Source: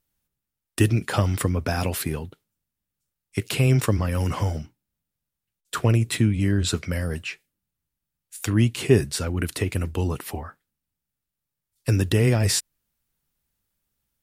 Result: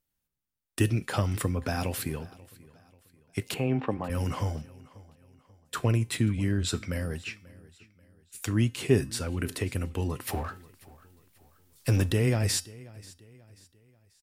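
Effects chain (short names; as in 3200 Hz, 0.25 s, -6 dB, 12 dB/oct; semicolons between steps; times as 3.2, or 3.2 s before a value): 3.54–4.1 speaker cabinet 180–2600 Hz, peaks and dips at 800 Hz +9 dB, 1400 Hz -5 dB, 2100 Hz -6 dB; 10.27–12.11 power-law curve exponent 0.7; resonator 260 Hz, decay 0.39 s, harmonics all, mix 50%; feedback echo 0.537 s, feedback 40%, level -21.5 dB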